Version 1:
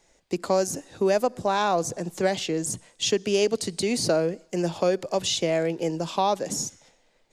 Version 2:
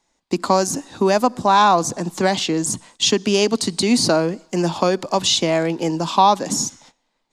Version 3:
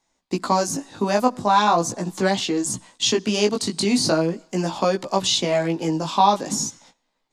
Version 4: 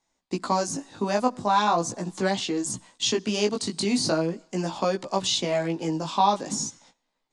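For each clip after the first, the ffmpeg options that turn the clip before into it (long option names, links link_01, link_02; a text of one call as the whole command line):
ffmpeg -i in.wav -af "equalizer=frequency=250:width_type=o:width=1:gain=9,equalizer=frequency=500:width_type=o:width=1:gain=-5,equalizer=frequency=1000:width_type=o:width=1:gain=11,equalizer=frequency=4000:width_type=o:width=1:gain=6,equalizer=frequency=8000:width_type=o:width=1:gain=3,agate=range=-13dB:threshold=-50dB:ratio=16:detection=peak,volume=3dB" out.wav
ffmpeg -i in.wav -af "flanger=delay=15:depth=4.8:speed=0.4" out.wav
ffmpeg -i in.wav -af "aresample=22050,aresample=44100,volume=-4.5dB" out.wav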